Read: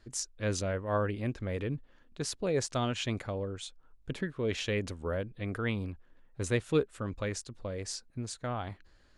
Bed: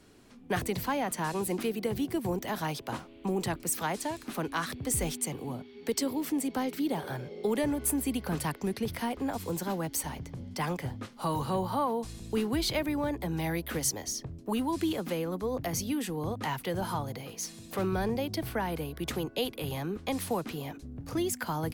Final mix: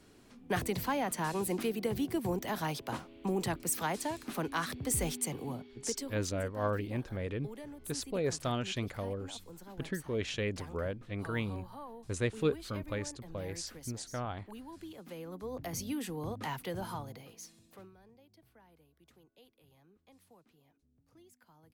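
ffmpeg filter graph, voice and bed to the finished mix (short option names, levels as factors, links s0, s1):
-filter_complex "[0:a]adelay=5700,volume=0.75[s0];[1:a]volume=3.35,afade=t=out:st=5.49:d=0.73:silence=0.16788,afade=t=in:st=14.93:d=1:silence=0.237137,afade=t=out:st=16.61:d=1.33:silence=0.0530884[s1];[s0][s1]amix=inputs=2:normalize=0"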